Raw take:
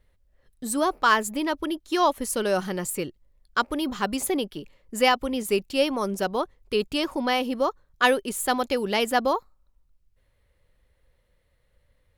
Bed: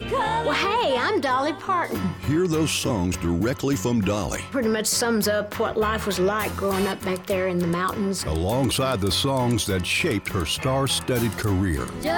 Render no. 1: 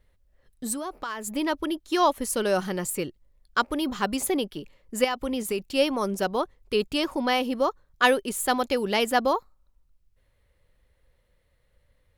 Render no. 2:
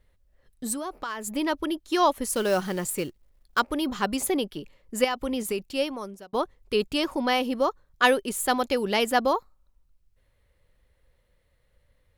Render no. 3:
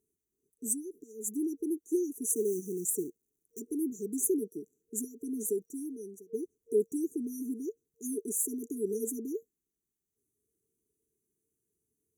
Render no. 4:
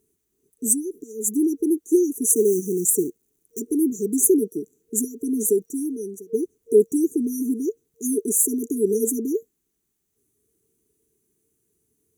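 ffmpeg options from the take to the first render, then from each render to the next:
-filter_complex "[0:a]asplit=3[a][b][c];[a]afade=t=out:st=0.73:d=0.02[d];[b]acompressor=threshold=-30dB:ratio=6:attack=3.2:release=140:knee=1:detection=peak,afade=t=in:st=0.73:d=0.02,afade=t=out:st=1.26:d=0.02[e];[c]afade=t=in:st=1.26:d=0.02[f];[d][e][f]amix=inputs=3:normalize=0,asettb=1/sr,asplit=3[g][h][i];[g]atrim=end=5.044[j];[h]atrim=start=5.04:end=5.74,asetpts=PTS-STARTPTS,afade=t=in:d=0.004:c=qsin,afade=t=out:st=0.696:d=0.004:c=qsin,acompressor=threshold=-23dB:ratio=6:attack=3.2:release=140:knee=1:detection=peak[k];[i]atrim=start=5.736[l];[j][k]acrossfade=d=0.004:c1=hsin:c2=qsin[m];[m][l]acrossfade=d=0.004:c1=qsin:c2=hsin"
-filter_complex "[0:a]asettb=1/sr,asplit=3[a][b][c];[a]atrim=end=2.324[d];[b]atrim=start=2.32:end=3.6,asetpts=PTS-STARTPTS,afade=t=in:d=0.004:c=qsin,afade=t=out:st=1.276:d=0.004:c=qsin,acrusher=bits=5:mode=log:mix=0:aa=0.000001[e];[c]atrim=start=3.596[f];[d][e]acrossfade=d=0.004:c1=hsin:c2=qsin[g];[g][f]acrossfade=d=0.004:c1=qsin:c2=hsin,asplit=2[h][i];[h]atrim=end=6.33,asetpts=PTS-STARTPTS,afade=t=out:st=5.48:d=0.85[j];[i]atrim=start=6.33,asetpts=PTS-STARTPTS,afade=t=in:d=0.004:c=hsin[k];[j][k]concat=n=2:v=0:a=1"
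-af "highpass=340,afftfilt=real='re*(1-between(b*sr/4096,460,5800))':imag='im*(1-between(b*sr/4096,460,5800))':win_size=4096:overlap=0.75"
-af "volume=12dB"

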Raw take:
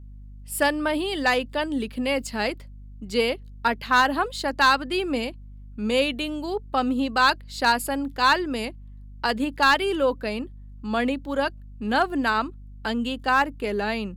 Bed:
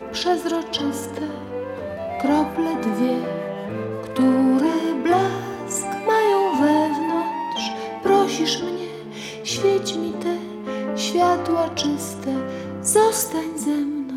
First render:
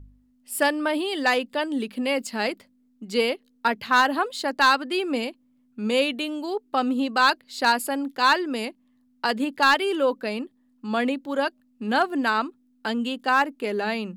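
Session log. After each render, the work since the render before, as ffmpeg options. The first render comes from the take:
-af "bandreject=f=50:t=h:w=4,bandreject=f=100:t=h:w=4,bandreject=f=150:t=h:w=4,bandreject=f=200:t=h:w=4"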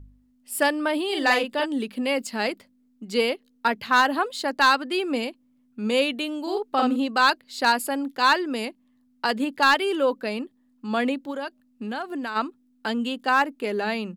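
-filter_complex "[0:a]asplit=3[a][b][c];[a]afade=t=out:st=1.09:d=0.02[d];[b]asplit=2[e][f];[f]adelay=45,volume=-3.5dB[g];[e][g]amix=inputs=2:normalize=0,afade=t=in:st=1.09:d=0.02,afade=t=out:st=1.64:d=0.02[h];[c]afade=t=in:st=1.64:d=0.02[i];[d][h][i]amix=inputs=3:normalize=0,asplit=3[j][k][l];[j]afade=t=out:st=6.45:d=0.02[m];[k]asplit=2[n][o];[o]adelay=49,volume=-2.5dB[p];[n][p]amix=inputs=2:normalize=0,afade=t=in:st=6.45:d=0.02,afade=t=out:st=6.95:d=0.02[q];[l]afade=t=in:st=6.95:d=0.02[r];[m][q][r]amix=inputs=3:normalize=0,asplit=3[s][t][u];[s]afade=t=out:st=11.3:d=0.02[v];[t]acompressor=threshold=-28dB:ratio=4:attack=3.2:release=140:knee=1:detection=peak,afade=t=in:st=11.3:d=0.02,afade=t=out:st=12.35:d=0.02[w];[u]afade=t=in:st=12.35:d=0.02[x];[v][w][x]amix=inputs=3:normalize=0"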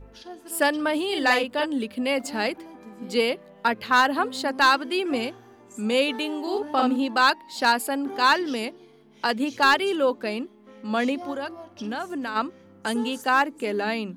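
-filter_complex "[1:a]volume=-21dB[a];[0:a][a]amix=inputs=2:normalize=0"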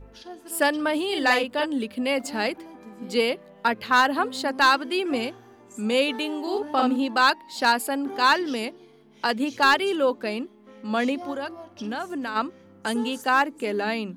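-af anull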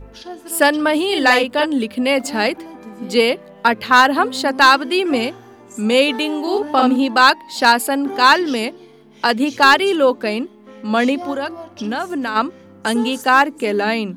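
-af "volume=8dB,alimiter=limit=-2dB:level=0:latency=1"

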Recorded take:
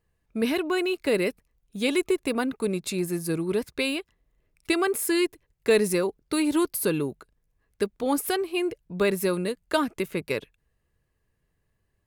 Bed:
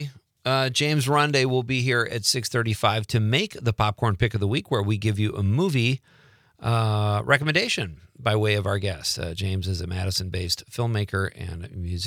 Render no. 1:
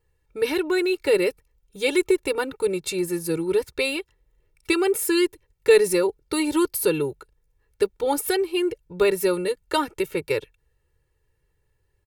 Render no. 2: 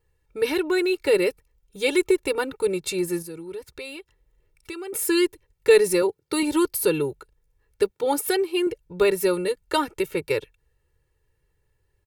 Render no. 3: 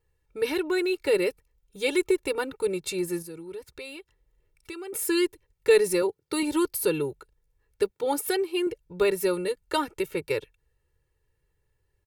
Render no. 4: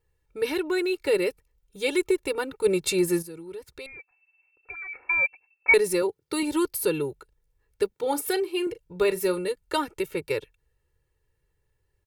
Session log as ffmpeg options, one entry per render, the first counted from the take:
-af "aecho=1:1:2.2:0.95"
-filter_complex "[0:a]asettb=1/sr,asplit=3[a][b][c];[a]atrim=end=3.224[d];[b]atrim=start=3.22:end=4.93,asetpts=PTS-STARTPTS,afade=t=in:d=0.004:c=qsin,afade=t=out:st=1.706:d=0.004:c=qsin,acompressor=threshold=-43dB:ratio=2:attack=3.2:release=140:knee=1:detection=peak[e];[c]atrim=start=4.926[f];[d][e]acrossfade=d=0.004:c1=hsin:c2=qsin[g];[g][f]acrossfade=d=0.004:c1=qsin:c2=hsin,asettb=1/sr,asplit=3[h][i][j];[h]atrim=end=6.024[k];[i]atrim=start=6.02:end=6.43,asetpts=PTS-STARTPTS,afade=t=in:d=0.004:c=qsin,afade=t=out:st=0.406:d=0.004:c=qsin,highpass=f=86:w=0.5412,highpass=f=86:w=1.3066[l];[j]atrim=start=6.426[m];[k][l]acrossfade=d=0.004:c1=hsin:c2=qsin[n];[n][m]acrossfade=d=0.004:c1=qsin:c2=hsin,asettb=1/sr,asplit=3[o][p][q];[o]atrim=end=7.914[r];[p]atrim=start=7.91:end=8.67,asetpts=PTS-STARTPTS,afade=t=in:d=0.004:c=qsin,afade=t=out:st=0.756:d=0.004:c=qsin,highpass=f=98:w=0.5412,highpass=f=98:w=1.3066[s];[q]atrim=start=8.666[t];[r][s]acrossfade=d=0.004:c1=hsin:c2=qsin[u];[u][t]acrossfade=d=0.004:c1=qsin:c2=hsin"
-af "volume=-3.5dB"
-filter_complex "[0:a]asplit=3[a][b][c];[a]afade=t=out:st=2.64:d=0.02[d];[b]acontrast=50,afade=t=in:st=2.64:d=0.02,afade=t=out:st=3.21:d=0.02[e];[c]afade=t=in:st=3.21:d=0.02[f];[d][e][f]amix=inputs=3:normalize=0,asettb=1/sr,asplit=3[g][h][i];[g]atrim=end=3.864[j];[h]atrim=start=3.86:end=5.74,asetpts=PTS-STARTPTS,afade=t=in:d=0.004:c=qsin,afade=t=out:st=1.876:d=0.004:c=qsin,lowpass=f=2.3k:t=q:w=0.5098,lowpass=f=2.3k:t=q:w=0.6013,lowpass=f=2.3k:t=q:w=0.9,lowpass=f=2.3k:t=q:w=2.563,afreqshift=-2700[k];[i]atrim=start=5.736[l];[j][k]acrossfade=d=0.004:c1=hsin:c2=qsin[m];[m][l]acrossfade=d=0.004:c1=qsin:c2=hsin,asettb=1/sr,asplit=3[n][o][p];[n]atrim=end=7.884[q];[o]atrim=start=7.88:end=9.39,asetpts=PTS-STARTPTS,afade=t=in:d=0.004:c=qsin,afade=t=out:st=1.506:d=0.004:c=qsin,asplit=2[r][s];[s]adelay=38,volume=-13.5dB[t];[r][t]amix=inputs=2:normalize=0,atrim=end_sample=66591[u];[p]atrim=start=9.386[v];[q][u]acrossfade=d=0.004:c1=hsin:c2=qsin[w];[w][v]acrossfade=d=0.004:c1=qsin:c2=hsin"

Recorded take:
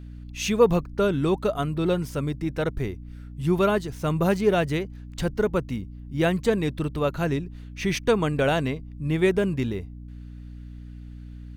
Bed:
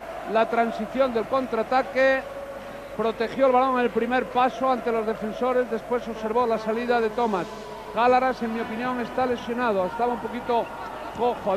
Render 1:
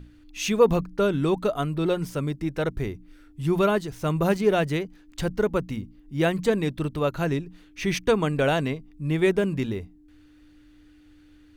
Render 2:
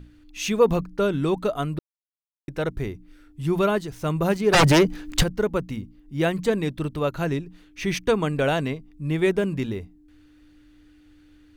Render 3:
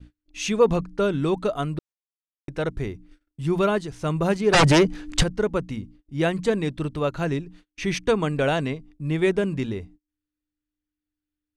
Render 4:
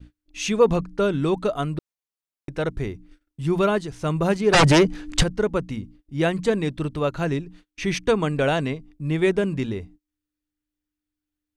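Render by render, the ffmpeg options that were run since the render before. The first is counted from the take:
-af "bandreject=f=60:t=h:w=6,bandreject=f=120:t=h:w=6,bandreject=f=180:t=h:w=6,bandreject=f=240:t=h:w=6"
-filter_complex "[0:a]asplit=3[a][b][c];[a]afade=t=out:st=4.52:d=0.02[d];[b]aeval=exprs='0.266*sin(PI/2*3.98*val(0)/0.266)':c=same,afade=t=in:st=4.52:d=0.02,afade=t=out:st=5.22:d=0.02[e];[c]afade=t=in:st=5.22:d=0.02[f];[d][e][f]amix=inputs=3:normalize=0,asplit=3[g][h][i];[g]atrim=end=1.79,asetpts=PTS-STARTPTS,afade=t=out:st=1.786:d=0.004:c=hsin[j];[h]atrim=start=1.79:end=2.48,asetpts=PTS-STARTPTS,volume=0[k];[i]atrim=start=2.48,asetpts=PTS-STARTPTS,afade=t=in:d=0.004:c=hsin[l];[j][k][l]concat=n=3:v=0:a=1"
-af "agate=range=-34dB:threshold=-46dB:ratio=16:detection=peak,lowpass=f=10k:w=0.5412,lowpass=f=10k:w=1.3066"
-af "volume=1dB"

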